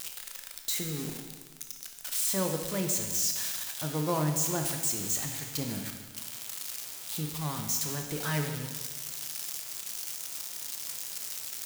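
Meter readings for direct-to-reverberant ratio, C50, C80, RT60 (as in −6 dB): 3.5 dB, 5.5 dB, 7.0 dB, 1.5 s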